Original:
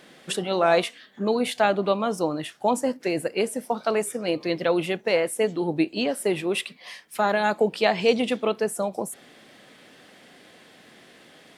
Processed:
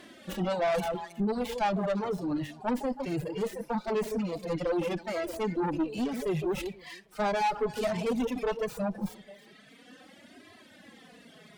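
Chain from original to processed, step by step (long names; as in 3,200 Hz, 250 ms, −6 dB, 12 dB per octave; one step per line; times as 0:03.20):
stylus tracing distortion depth 0.24 ms
high-pass filter 43 Hz
low-shelf EQ 130 Hz +11 dB
delay that swaps between a low-pass and a high-pass 160 ms, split 810 Hz, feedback 51%, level −10.5 dB
in parallel at −3 dB: compressor whose output falls as the input rises −27 dBFS, ratio −0.5
on the sum: dynamic equaliser 880 Hz, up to +8 dB, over −42 dBFS, Q 7.8
flanger 0.19 Hz, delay 2.9 ms, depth 4.9 ms, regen −29%
harmonic and percussive parts rebalanced percussive −17 dB
tube saturation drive 24 dB, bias 0.45
reverb reduction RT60 1.8 s
level +1.5 dB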